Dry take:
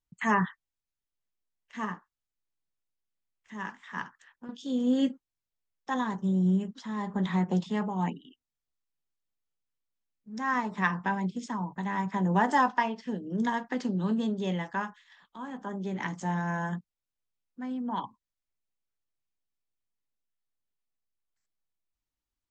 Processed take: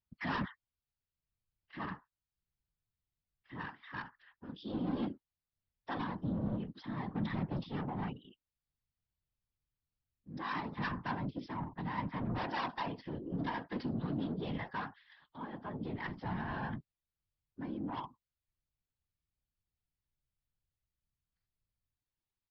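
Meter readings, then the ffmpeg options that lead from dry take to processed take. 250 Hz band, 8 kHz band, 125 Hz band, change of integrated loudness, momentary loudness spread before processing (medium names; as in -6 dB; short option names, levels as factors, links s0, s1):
-9.5 dB, no reading, -7.0 dB, -9.0 dB, 15 LU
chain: -af "aresample=11025,asoftclip=type=tanh:threshold=0.0376,aresample=44100,afftfilt=real='hypot(re,im)*cos(2*PI*random(0))':imag='hypot(re,im)*sin(2*PI*random(1))':win_size=512:overlap=0.75,volume=1.19"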